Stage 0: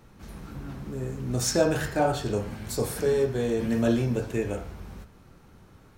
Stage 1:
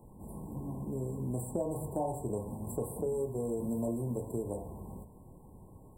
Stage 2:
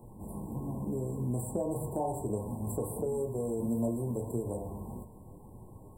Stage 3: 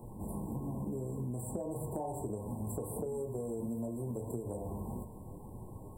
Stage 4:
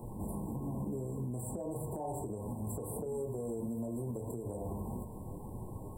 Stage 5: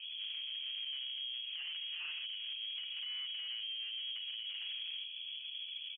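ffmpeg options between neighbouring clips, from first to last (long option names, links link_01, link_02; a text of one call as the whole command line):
ffmpeg -i in.wav -filter_complex "[0:a]afftfilt=real='re*(1-between(b*sr/4096,1100,7400))':imag='im*(1-between(b*sr/4096,1100,7400))':win_size=4096:overlap=0.75,acrossover=split=90|1300[link_01][link_02][link_03];[link_01]acompressor=threshold=-53dB:ratio=4[link_04];[link_02]acompressor=threshold=-33dB:ratio=4[link_05];[link_03]acompressor=threshold=-48dB:ratio=4[link_06];[link_04][link_05][link_06]amix=inputs=3:normalize=0" out.wav
ffmpeg -i in.wav -filter_complex "[0:a]flanger=delay=8.3:depth=1.8:regen=63:speed=1.6:shape=sinusoidal,asplit=2[link_01][link_02];[link_02]alimiter=level_in=11.5dB:limit=-24dB:level=0:latency=1:release=95,volume=-11.5dB,volume=-3dB[link_03];[link_01][link_03]amix=inputs=2:normalize=0,volume=3dB" out.wav
ffmpeg -i in.wav -af "acompressor=threshold=-38dB:ratio=6,volume=3dB" out.wav
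ffmpeg -i in.wav -af "alimiter=level_in=9.5dB:limit=-24dB:level=0:latency=1:release=173,volume=-9.5dB,volume=3.5dB" out.wav
ffmpeg -i in.wav -af "aresample=16000,asoftclip=type=tanh:threshold=-39.5dB,aresample=44100,lowpass=frequency=2900:width_type=q:width=0.5098,lowpass=frequency=2900:width_type=q:width=0.6013,lowpass=frequency=2900:width_type=q:width=0.9,lowpass=frequency=2900:width_type=q:width=2.563,afreqshift=-3400,volume=1dB" out.wav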